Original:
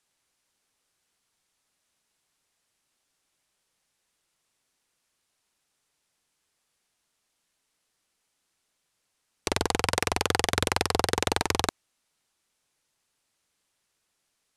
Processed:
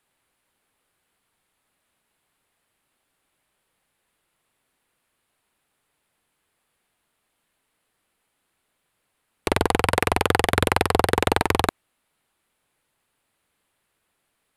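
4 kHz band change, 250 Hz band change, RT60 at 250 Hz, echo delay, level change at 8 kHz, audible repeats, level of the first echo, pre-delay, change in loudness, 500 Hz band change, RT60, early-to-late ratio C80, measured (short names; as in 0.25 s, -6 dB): +1.0 dB, +7.0 dB, none, none, -1.5 dB, none, none, none, +5.0 dB, +7.0 dB, none, none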